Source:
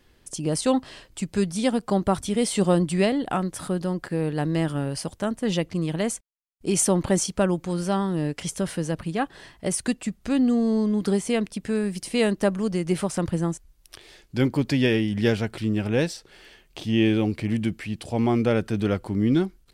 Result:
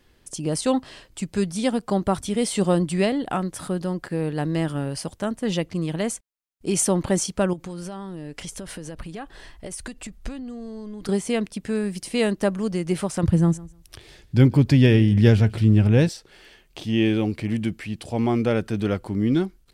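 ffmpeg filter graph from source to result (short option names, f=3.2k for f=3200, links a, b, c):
-filter_complex "[0:a]asettb=1/sr,asplit=3[a][b][c];[a]atrim=end=7.534[d];[b]atrim=start=7.53:end=11.09,asetpts=PTS-STARTPTS,afade=t=in:d=0.004:c=qsin,afade=t=out:st=3.556:d=0.004:c=qsin,acompressor=threshold=-29dB:ratio=12:attack=3.2:release=140:knee=1:detection=peak,asubboost=boost=10.5:cutoff=53[e];[c]atrim=start=11.086[f];[d][e]acrossfade=d=0.004:c1=hsin:c2=qsin[g];[g][f]acrossfade=d=0.004:c1=qsin:c2=hsin,asettb=1/sr,asplit=3[h][i][j];[h]atrim=end=13.234[k];[i]atrim=start=13.23:end=16.09,asetpts=PTS-STARTPTS,afade=t=in:d=0.004:c=qsin,afade=t=out:st=2.856:d=0.004:c=qsin,equalizer=f=85:w=0.59:g=14,aecho=1:1:150|300:0.0891|0.0134,atrim=end_sample=126126[l];[j]atrim=start=16.086[m];[k][l]acrossfade=d=0.004:c1=hsin:c2=qsin[n];[n][m]acrossfade=d=0.004:c1=qsin:c2=hsin"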